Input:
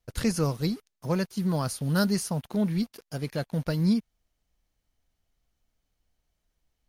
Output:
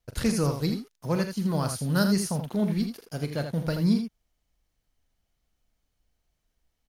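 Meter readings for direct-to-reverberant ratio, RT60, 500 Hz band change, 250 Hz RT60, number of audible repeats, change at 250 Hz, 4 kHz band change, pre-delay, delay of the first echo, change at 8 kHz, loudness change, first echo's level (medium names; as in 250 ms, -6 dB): no reverb, no reverb, +1.0 dB, no reverb, 2, +1.0 dB, +1.0 dB, no reverb, 41 ms, +1.0 dB, +1.0 dB, -11.5 dB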